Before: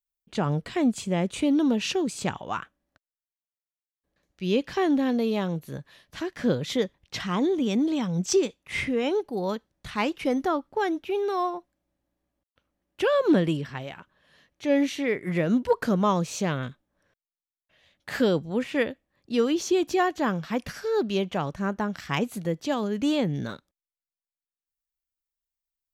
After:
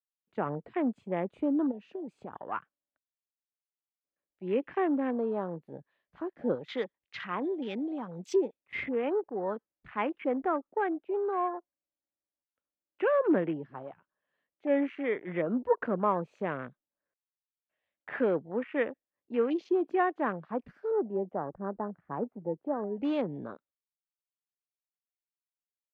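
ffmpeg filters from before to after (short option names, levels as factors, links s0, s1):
-filter_complex "[0:a]asplit=3[s0][s1][s2];[s0]afade=t=out:st=1.7:d=0.02[s3];[s1]acompressor=threshold=0.0316:ratio=6:attack=3.2:release=140:knee=1:detection=peak,afade=t=in:st=1.7:d=0.02,afade=t=out:st=2.51:d=0.02[s4];[s2]afade=t=in:st=2.51:d=0.02[s5];[s3][s4][s5]amix=inputs=3:normalize=0,asettb=1/sr,asplit=3[s6][s7][s8];[s6]atrim=end=6.554[s9];[s7]atrim=start=6.55:end=8.34,asetpts=PTS-STARTPTS,afade=t=in:d=0.004:c=qsin,afade=t=out:st=1.786:d=0.004:c=qsin,tiltshelf=f=1100:g=-4.5[s10];[s8]atrim=start=8.336[s11];[s9][s10]acrossfade=d=0.004:c1=hsin:c2=qsin[s12];[s12][s11]acrossfade=d=0.004:c1=qsin:c2=hsin,asettb=1/sr,asplit=3[s13][s14][s15];[s13]atrim=end=20.914[s16];[s14]atrim=start=20.91:end=22.97,asetpts=PTS-STARTPTS,afade=t=in:d=0.004:c=qsin,afade=t=out:st=2.056:d=0.004:c=qsin,lowpass=1000[s17];[s15]atrim=start=22.966[s18];[s16][s17]acrossfade=d=0.004:c1=hsin:c2=qsin[s19];[s19][s18]acrossfade=d=0.004:c1=qsin:c2=hsin,afwtdn=0.0158,acrossover=split=250 2600:gain=0.2 1 0.0708[s20][s21][s22];[s20][s21][s22]amix=inputs=3:normalize=0,bandreject=f=5600:w=18,volume=0.708"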